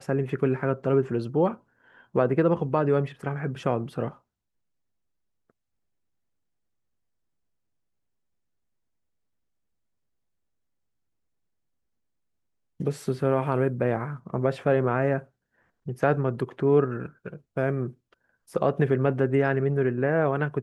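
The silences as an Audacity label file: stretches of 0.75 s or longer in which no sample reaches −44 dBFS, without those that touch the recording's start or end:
4.130000	12.800000	silence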